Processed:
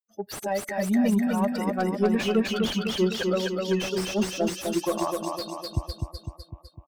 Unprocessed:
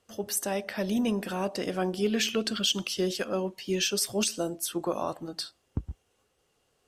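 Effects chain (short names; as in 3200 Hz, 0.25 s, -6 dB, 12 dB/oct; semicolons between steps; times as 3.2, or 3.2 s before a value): per-bin expansion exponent 2; soft clip -23 dBFS, distortion -19 dB; on a send: feedback echo 0.252 s, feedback 57%, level -4 dB; on the sum: slew limiter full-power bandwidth 36 Hz; gain +8.5 dB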